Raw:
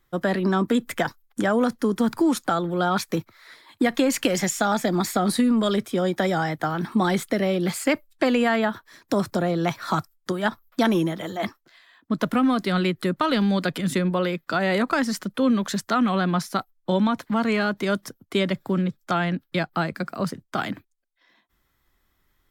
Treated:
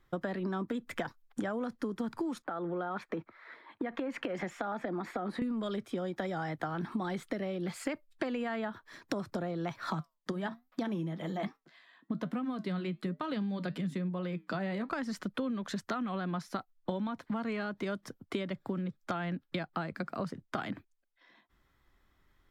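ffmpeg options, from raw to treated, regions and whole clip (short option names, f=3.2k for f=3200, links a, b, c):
-filter_complex "[0:a]asettb=1/sr,asplit=3[a][b][c];[a]atrim=end=2.424[d];[b]atrim=start=2.42:end=5.42,asetpts=PTS-STARTPTS,afade=t=in:d=0.004:c=qsin,afade=t=out:st=2.996:d=0.004:c=qsin,acrossover=split=200 2600:gain=0.178 1 0.112[e][f][g];[e][f][g]amix=inputs=3:normalize=0,acompressor=threshold=-29dB:ratio=2.5:attack=3.2:release=140:knee=1:detection=peak[h];[c]atrim=start=5.416[i];[d][h]acrossfade=d=0.004:c1=hsin:c2=qsin[j];[j][i]acrossfade=d=0.004:c1=qsin:c2=hsin,asettb=1/sr,asplit=3[k][l][m];[k]atrim=end=9.904[n];[l]atrim=start=9.9:end=14.89,asetpts=PTS-STARTPTS,afade=t=in:d=0.004:c=qsin,afade=t=out:st=4.986:d=0.004:c=qsin,lowshelf=f=110:t=q:w=3:g=-12,bandreject=f=1.4k:w=14,flanger=delay=5.4:depth=2.8:regen=-79:speed=1.2:shape=triangular[o];[m]atrim=start=14.886[p];[n][o]acrossfade=d=0.004:c1=hsin:c2=qsin[q];[q][p]acrossfade=d=0.004:c1=qsin:c2=hsin,aemphasis=mode=reproduction:type=50kf,acompressor=threshold=-32dB:ratio=10"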